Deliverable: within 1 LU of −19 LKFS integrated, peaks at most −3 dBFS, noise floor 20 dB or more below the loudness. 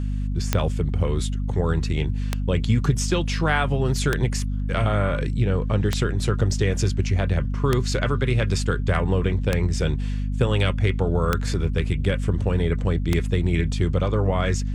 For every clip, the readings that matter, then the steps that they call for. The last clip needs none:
number of clicks 8; mains hum 50 Hz; hum harmonics up to 250 Hz; level of the hum −22 dBFS; integrated loudness −23.5 LKFS; sample peak −4.0 dBFS; target loudness −19.0 LKFS
→ click removal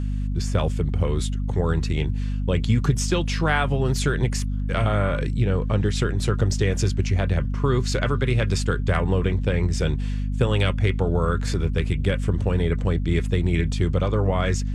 number of clicks 0; mains hum 50 Hz; hum harmonics up to 250 Hz; level of the hum −22 dBFS
→ hum removal 50 Hz, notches 5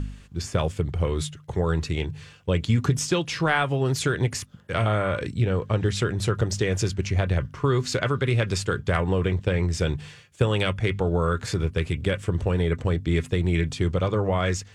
mains hum none found; integrated loudness −25.5 LKFS; sample peak −7.5 dBFS; target loudness −19.0 LKFS
→ level +6.5 dB
brickwall limiter −3 dBFS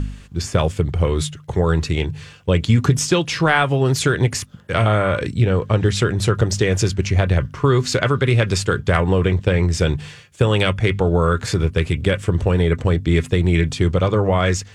integrated loudness −19.0 LKFS; sample peak −3.0 dBFS; background noise floor −42 dBFS

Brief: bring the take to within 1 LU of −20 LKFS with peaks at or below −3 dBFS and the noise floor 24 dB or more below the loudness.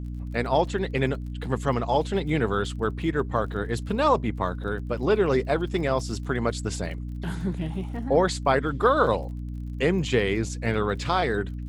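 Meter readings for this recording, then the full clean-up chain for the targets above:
crackle rate 33 per second; mains hum 60 Hz; hum harmonics up to 300 Hz; level of the hum −31 dBFS; integrated loudness −26.0 LKFS; sample peak −8.0 dBFS; target loudness −20.0 LKFS
→ click removal
hum removal 60 Hz, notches 5
level +6 dB
brickwall limiter −3 dBFS

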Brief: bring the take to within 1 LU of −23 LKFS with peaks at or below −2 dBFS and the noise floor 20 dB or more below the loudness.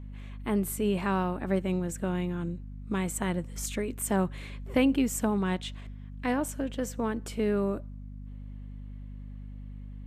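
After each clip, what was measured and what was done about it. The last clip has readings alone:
mains hum 50 Hz; hum harmonics up to 250 Hz; level of the hum −38 dBFS; integrated loudness −30.5 LKFS; sample peak −11.5 dBFS; target loudness −23.0 LKFS
→ mains-hum notches 50/100/150/200/250 Hz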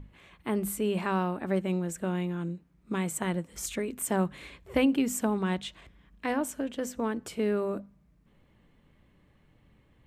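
mains hum none found; integrated loudness −31.0 LKFS; sample peak −12.0 dBFS; target loudness −23.0 LKFS
→ level +8 dB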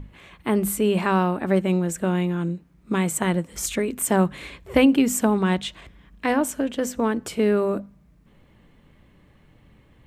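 integrated loudness −23.0 LKFS; sample peak −4.0 dBFS; background noise floor −56 dBFS

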